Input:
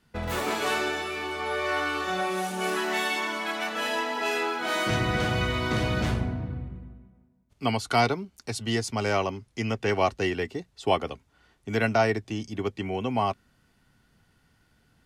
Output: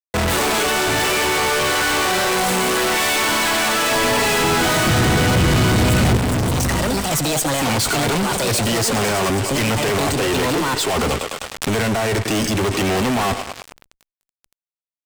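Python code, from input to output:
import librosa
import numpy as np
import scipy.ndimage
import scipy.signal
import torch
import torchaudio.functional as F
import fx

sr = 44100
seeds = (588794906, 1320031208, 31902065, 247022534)

y = fx.over_compress(x, sr, threshold_db=-30.0, ratio=-1.0)
y = scipy.signal.sosfilt(scipy.signal.butter(2, 53.0, 'highpass', fs=sr, output='sos'), y)
y = fx.echo_thinned(y, sr, ms=102, feedback_pct=83, hz=310.0, wet_db=-17.5)
y = y * (1.0 - 0.33 / 2.0 + 0.33 / 2.0 * np.cos(2.0 * np.pi * 0.62 * (np.arange(len(y)) / sr)))
y = fx.echo_pitch(y, sr, ms=763, semitones=5, count=2, db_per_echo=-6.0)
y = fx.fuzz(y, sr, gain_db=47.0, gate_db=-51.0)
y = fx.peak_eq(y, sr, hz=8200.0, db=8.0, octaves=0.28)
y = fx.leveller(y, sr, passes=3)
y = fx.low_shelf(y, sr, hz=370.0, db=6.5, at=(3.91, 6.17))
y = fx.pre_swell(y, sr, db_per_s=97.0)
y = y * librosa.db_to_amplitude(-10.5)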